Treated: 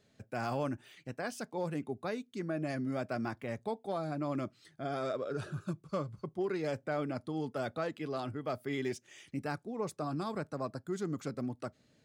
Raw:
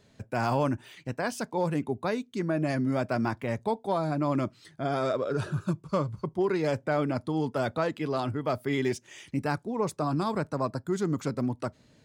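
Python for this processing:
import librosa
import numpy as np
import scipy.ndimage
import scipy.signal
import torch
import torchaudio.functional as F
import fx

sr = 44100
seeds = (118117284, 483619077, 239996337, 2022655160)

y = fx.low_shelf(x, sr, hz=92.0, db=-7.0)
y = fx.notch(y, sr, hz=960.0, q=6.6)
y = F.gain(torch.from_numpy(y), -7.0).numpy()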